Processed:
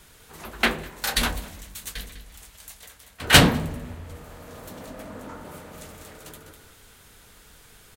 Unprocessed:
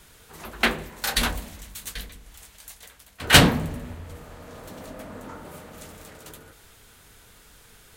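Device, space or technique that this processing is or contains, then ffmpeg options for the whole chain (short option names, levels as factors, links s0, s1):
ducked delay: -filter_complex "[0:a]asplit=3[s0][s1][s2];[s1]adelay=201,volume=0.398[s3];[s2]apad=whole_len=359971[s4];[s3][s4]sidechaincompress=threshold=0.0158:ratio=4:attack=6.3:release=864[s5];[s0][s5]amix=inputs=2:normalize=0,asettb=1/sr,asplit=3[s6][s7][s8];[s6]atrim=end=4.244[s9];[s7]atrim=start=4.24:end=4.73,asetpts=PTS-STARTPTS,afade=t=in:d=0.004:c=qsin,afade=t=out:st=0.486:d=0.004:c=qsin,highshelf=f=9700:g=6[s10];[s8]atrim=start=4.726[s11];[s9][s10]acrossfade=d=0.004:c1=hsin:c2=qsin[s12];[s12][s11]acrossfade=d=0.004:c1=qsin:c2=hsin"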